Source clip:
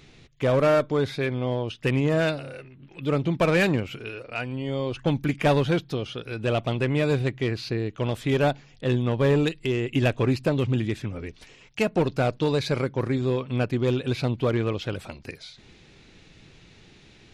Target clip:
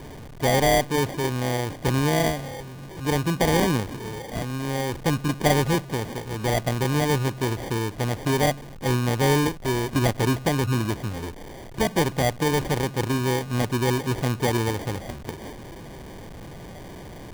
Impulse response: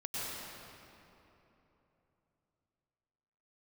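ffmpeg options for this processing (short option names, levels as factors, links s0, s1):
-af "aeval=exprs='val(0)+0.5*0.0168*sgn(val(0))':c=same,acrusher=samples=33:mix=1:aa=0.000001"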